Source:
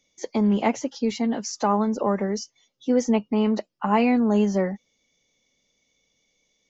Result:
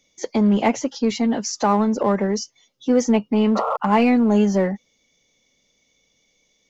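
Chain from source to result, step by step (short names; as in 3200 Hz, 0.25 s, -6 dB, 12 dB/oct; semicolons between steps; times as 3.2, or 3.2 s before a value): painted sound noise, 3.55–3.77, 440–1400 Hz -27 dBFS; in parallel at -7.5 dB: hard clip -23.5 dBFS, distortion -7 dB; on the sum: gain +2 dB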